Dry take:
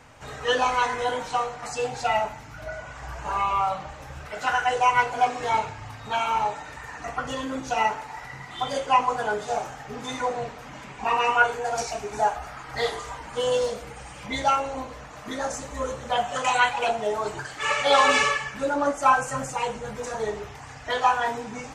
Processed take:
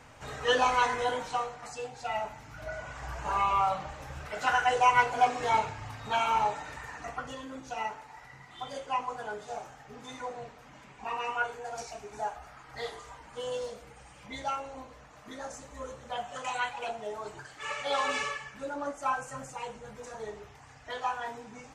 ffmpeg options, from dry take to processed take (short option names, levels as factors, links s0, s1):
-af "volume=2.51,afade=t=out:st=0.88:d=1.07:silence=0.298538,afade=t=in:st=1.95:d=0.91:silence=0.298538,afade=t=out:st=6.73:d=0.66:silence=0.354813"